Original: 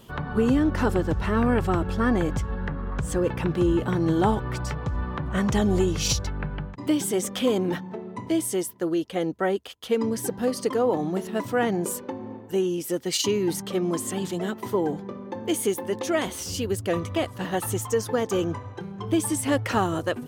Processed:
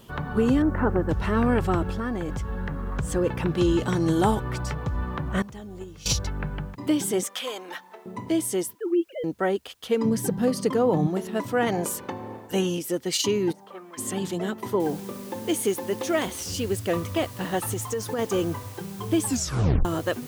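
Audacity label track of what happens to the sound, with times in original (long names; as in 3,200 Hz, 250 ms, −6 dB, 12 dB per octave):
0.620000	1.090000	low-pass filter 1,900 Hz 24 dB per octave
1.900000	2.820000	downward compressor, threshold −25 dBFS
3.570000	4.400000	parametric band 4,000 Hz → 14,000 Hz +12 dB 1.5 octaves
5.420000	6.060000	noise gate −18 dBFS, range −18 dB
7.230000	8.060000	high-pass filter 880 Hz
8.750000	9.240000	three sine waves on the formant tracks
10.050000	11.070000	parametric band 160 Hz +13 dB 0.71 octaves
11.660000	12.780000	ceiling on every frequency bin ceiling under each frame's peak by 13 dB
13.510000	13.970000	resonant band-pass 500 Hz → 2,200 Hz, Q 2.5
14.800000	14.800000	noise floor change −69 dB −47 dB
17.700000	18.190000	downward compressor 5 to 1, threshold −24 dBFS
19.240000	19.240000	tape stop 0.61 s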